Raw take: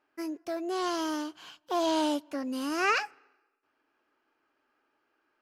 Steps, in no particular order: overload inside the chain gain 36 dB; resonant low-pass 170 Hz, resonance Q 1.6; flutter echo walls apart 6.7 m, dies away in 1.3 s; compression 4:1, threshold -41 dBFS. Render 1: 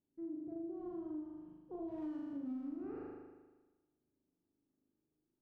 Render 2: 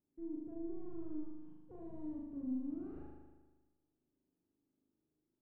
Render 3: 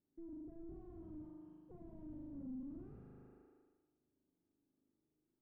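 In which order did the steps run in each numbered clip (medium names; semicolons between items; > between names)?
resonant low-pass > overload inside the chain > flutter echo > compression; overload inside the chain > resonant low-pass > compression > flutter echo; flutter echo > overload inside the chain > compression > resonant low-pass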